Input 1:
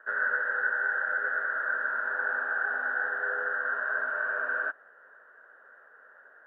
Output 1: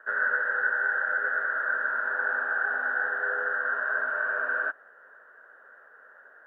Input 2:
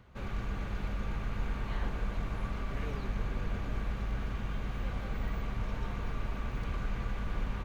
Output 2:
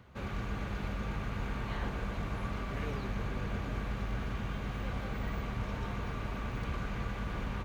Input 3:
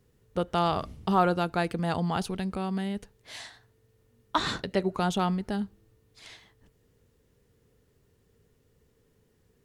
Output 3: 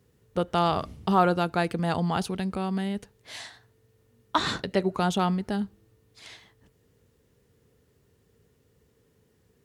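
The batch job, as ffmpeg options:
-af "highpass=57,volume=2dB"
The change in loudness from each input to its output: +2.0, 0.0, +2.0 LU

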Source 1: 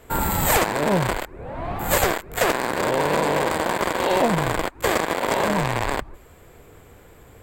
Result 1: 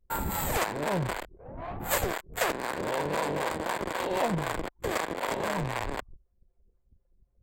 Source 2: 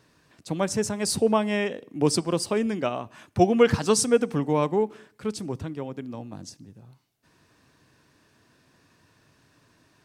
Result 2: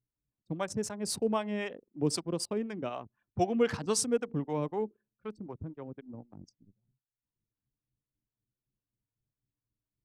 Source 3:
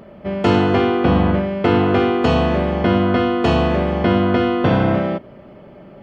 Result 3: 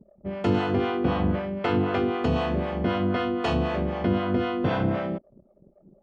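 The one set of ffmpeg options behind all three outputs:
-filter_complex "[0:a]acrossover=split=490[a][b];[a]aeval=exprs='val(0)*(1-0.7/2+0.7/2*cos(2*PI*3.9*n/s))':c=same[c];[b]aeval=exprs='val(0)*(1-0.7/2-0.7/2*cos(2*PI*3.9*n/s))':c=same[d];[c][d]amix=inputs=2:normalize=0,anlmdn=1.58,volume=-5.5dB"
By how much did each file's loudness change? -9.0, -8.5, -9.0 LU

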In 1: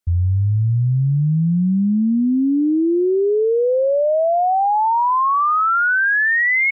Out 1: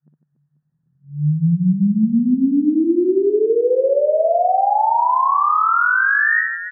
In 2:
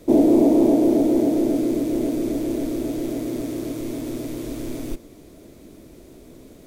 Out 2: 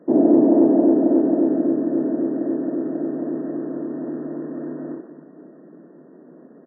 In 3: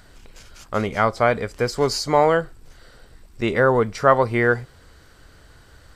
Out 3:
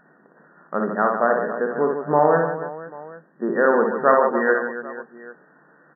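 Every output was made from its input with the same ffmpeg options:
-af "aecho=1:1:60|150|285|487.5|791.2:0.631|0.398|0.251|0.158|0.1,afftfilt=real='re*between(b*sr/4096,150,1900)':imag='im*between(b*sr/4096,150,1900)':win_size=4096:overlap=0.75,volume=-1.5dB"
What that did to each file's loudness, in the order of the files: +0.5, +1.0, 0.0 LU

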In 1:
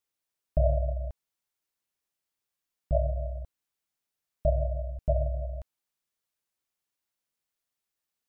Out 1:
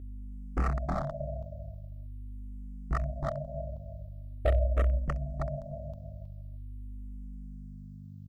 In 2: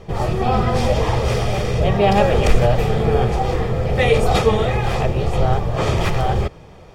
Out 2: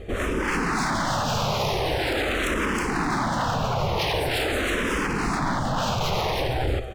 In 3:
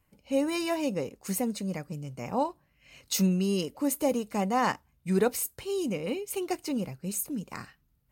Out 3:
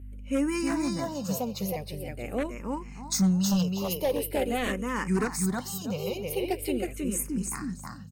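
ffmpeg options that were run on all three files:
-filter_complex "[0:a]alimiter=limit=-10dB:level=0:latency=1:release=33,aecho=1:1:318|636|954:0.708|0.17|0.0408,aeval=exprs='0.106*(abs(mod(val(0)/0.106+3,4)-2)-1)':c=same,aeval=exprs='val(0)+0.00891*(sin(2*PI*50*n/s)+sin(2*PI*2*50*n/s)/2+sin(2*PI*3*50*n/s)/3+sin(2*PI*4*50*n/s)/4+sin(2*PI*5*50*n/s)/5)':c=same,asplit=2[a][b];[b]afreqshift=-0.44[c];[a][c]amix=inputs=2:normalize=1,volume=2.5dB"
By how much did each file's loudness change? -4.5, -6.0, +0.5 LU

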